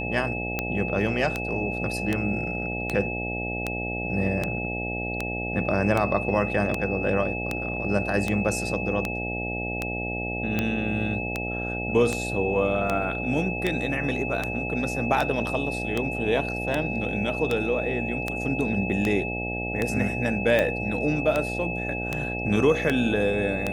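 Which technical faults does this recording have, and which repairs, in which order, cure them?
buzz 60 Hz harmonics 14 -32 dBFS
tick 78 rpm -11 dBFS
tone 2600 Hz -31 dBFS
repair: de-click; de-hum 60 Hz, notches 14; notch 2600 Hz, Q 30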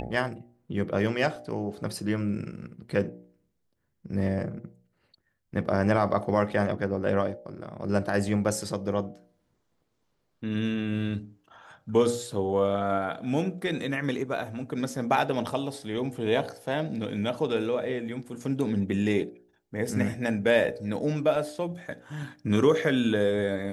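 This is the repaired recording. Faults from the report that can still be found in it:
none

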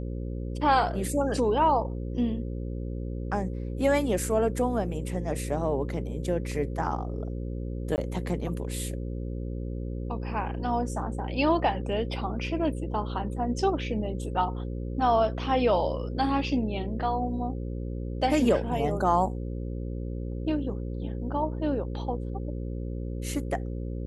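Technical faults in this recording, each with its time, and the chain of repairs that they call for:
buzz 60 Hz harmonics 9 -33 dBFS
7.96–7.98 gap 19 ms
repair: de-hum 60 Hz, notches 9; interpolate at 7.96, 19 ms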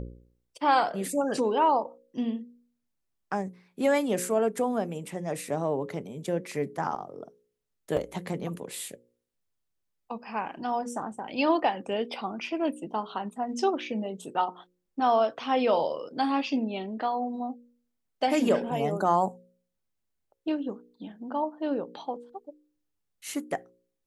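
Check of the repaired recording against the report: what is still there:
none

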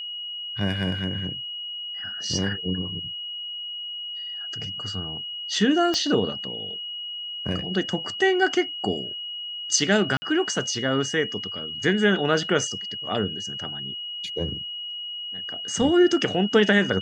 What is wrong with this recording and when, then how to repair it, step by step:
tone 2900 Hz -31 dBFS
5.94 pop -12 dBFS
10.17–10.22 gap 50 ms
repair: de-click; notch 2900 Hz, Q 30; interpolate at 10.17, 50 ms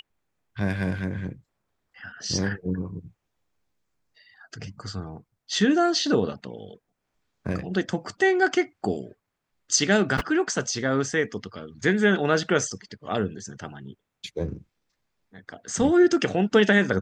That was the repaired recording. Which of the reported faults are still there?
5.94 pop

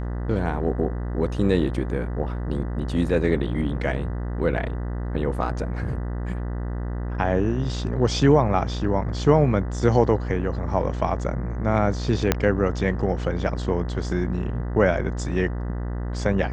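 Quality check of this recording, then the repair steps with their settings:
buzz 60 Hz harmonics 33 -28 dBFS
12.32 pop -3 dBFS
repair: de-click; de-hum 60 Hz, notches 33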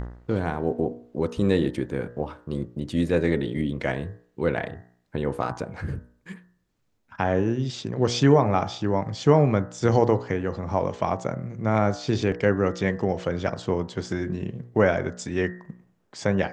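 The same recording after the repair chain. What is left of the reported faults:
12.32 pop

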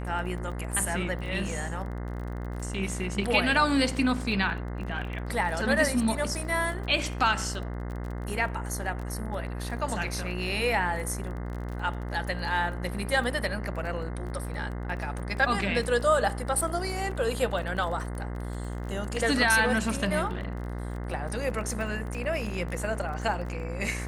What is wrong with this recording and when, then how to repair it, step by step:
buzz 60 Hz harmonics 35 -34 dBFS
crackle 23/s -35 dBFS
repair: de-click; de-hum 60 Hz, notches 35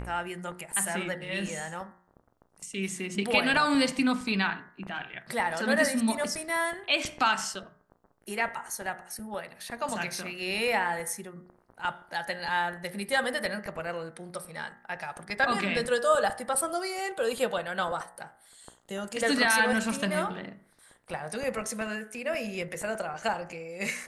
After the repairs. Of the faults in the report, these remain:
none

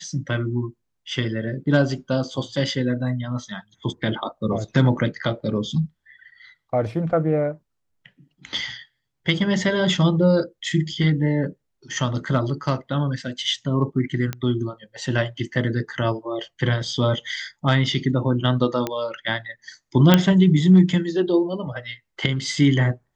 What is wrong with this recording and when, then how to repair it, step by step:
14.33 pop -13 dBFS
18.87 pop -10 dBFS
20.14 pop -1 dBFS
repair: de-click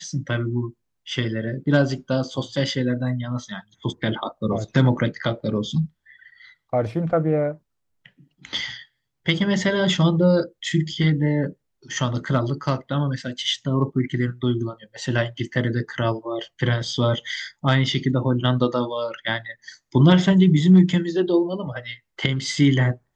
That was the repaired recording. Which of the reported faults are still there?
none

